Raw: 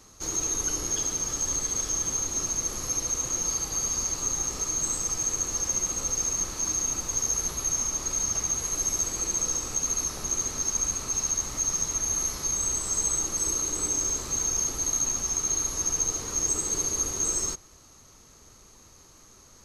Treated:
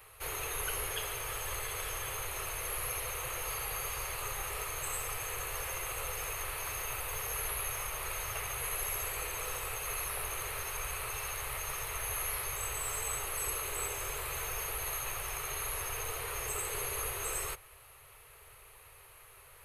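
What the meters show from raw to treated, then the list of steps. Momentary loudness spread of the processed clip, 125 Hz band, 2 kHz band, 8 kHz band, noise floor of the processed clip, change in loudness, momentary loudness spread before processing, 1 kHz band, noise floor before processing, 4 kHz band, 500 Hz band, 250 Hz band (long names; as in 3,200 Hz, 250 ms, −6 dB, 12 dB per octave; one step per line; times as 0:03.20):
5 LU, −5.0 dB, +5.5 dB, −14.5 dB, −56 dBFS, −10.0 dB, 2 LU, +1.0 dB, −54 dBFS, −4.5 dB, −2.0 dB, −16.5 dB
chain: drawn EQ curve 130 Hz 0 dB, 180 Hz −21 dB, 280 Hz −22 dB, 420 Hz +3 dB, 1,200 Hz +5 dB, 2,600 Hz +12 dB, 6,400 Hz −17 dB, 9,200 Hz +11 dB, 14,000 Hz +15 dB
level −4 dB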